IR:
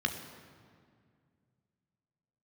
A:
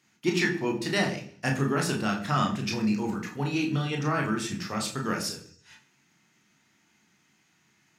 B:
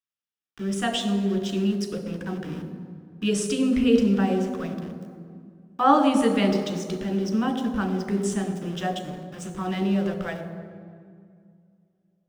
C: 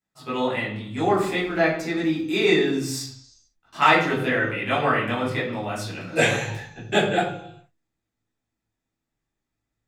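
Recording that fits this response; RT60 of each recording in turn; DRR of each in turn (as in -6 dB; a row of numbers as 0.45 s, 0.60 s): B; 0.50 s, 2.1 s, 0.75 s; 0.0 dB, 4.5 dB, -8.5 dB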